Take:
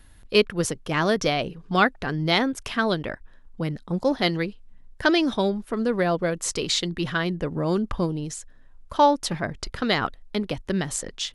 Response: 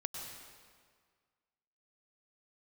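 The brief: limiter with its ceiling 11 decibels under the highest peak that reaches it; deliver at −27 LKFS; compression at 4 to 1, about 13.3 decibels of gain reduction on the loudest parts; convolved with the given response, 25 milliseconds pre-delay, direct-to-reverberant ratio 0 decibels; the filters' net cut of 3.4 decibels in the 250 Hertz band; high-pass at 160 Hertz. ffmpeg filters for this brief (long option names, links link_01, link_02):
-filter_complex "[0:a]highpass=160,equalizer=frequency=250:width_type=o:gain=-3.5,acompressor=threshold=-30dB:ratio=4,alimiter=level_in=2dB:limit=-24dB:level=0:latency=1,volume=-2dB,asplit=2[link_01][link_02];[1:a]atrim=start_sample=2205,adelay=25[link_03];[link_02][link_03]afir=irnorm=-1:irlink=0,volume=0dB[link_04];[link_01][link_04]amix=inputs=2:normalize=0,volume=7.5dB"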